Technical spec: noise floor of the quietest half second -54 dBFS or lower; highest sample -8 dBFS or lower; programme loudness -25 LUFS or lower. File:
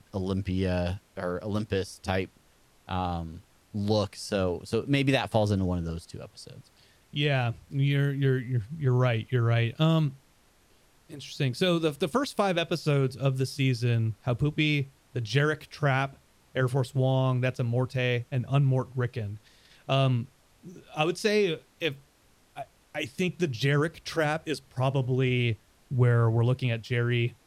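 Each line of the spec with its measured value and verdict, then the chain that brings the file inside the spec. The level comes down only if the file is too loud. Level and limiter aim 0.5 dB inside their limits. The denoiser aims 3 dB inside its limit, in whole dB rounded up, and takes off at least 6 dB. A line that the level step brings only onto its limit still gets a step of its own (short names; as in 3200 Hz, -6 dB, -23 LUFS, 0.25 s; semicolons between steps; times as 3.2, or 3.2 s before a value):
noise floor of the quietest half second -62 dBFS: OK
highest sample -10.0 dBFS: OK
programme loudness -28.0 LUFS: OK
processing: none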